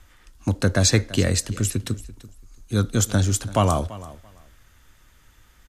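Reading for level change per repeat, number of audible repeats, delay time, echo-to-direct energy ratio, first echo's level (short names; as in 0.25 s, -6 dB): -15.0 dB, 2, 0.337 s, -18.0 dB, -18.0 dB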